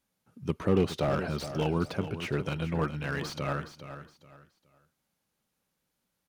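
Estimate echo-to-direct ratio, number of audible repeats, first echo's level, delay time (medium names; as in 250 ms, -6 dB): -11.0 dB, 3, -11.5 dB, 418 ms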